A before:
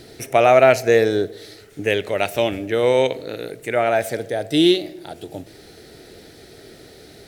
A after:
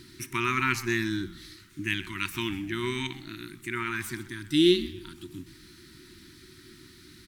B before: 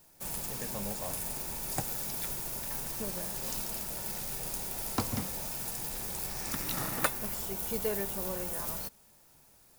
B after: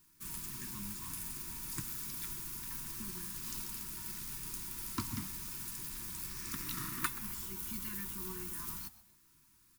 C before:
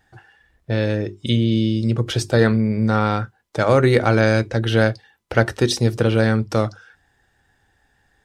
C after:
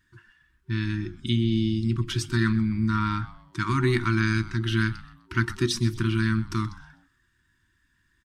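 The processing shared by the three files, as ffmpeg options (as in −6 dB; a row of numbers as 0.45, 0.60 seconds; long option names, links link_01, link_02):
-filter_complex "[0:a]afftfilt=real='re*(1-between(b*sr/4096,380,920))':imag='im*(1-between(b*sr/4096,380,920))':win_size=4096:overlap=0.75,asplit=4[link_01][link_02][link_03][link_04];[link_02]adelay=127,afreqshift=-130,volume=-17dB[link_05];[link_03]adelay=254,afreqshift=-260,volume=-25.9dB[link_06];[link_04]adelay=381,afreqshift=-390,volume=-34.7dB[link_07];[link_01][link_05][link_06][link_07]amix=inputs=4:normalize=0,volume=-5.5dB"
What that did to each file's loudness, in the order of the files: −10.5, −5.5, −7.0 LU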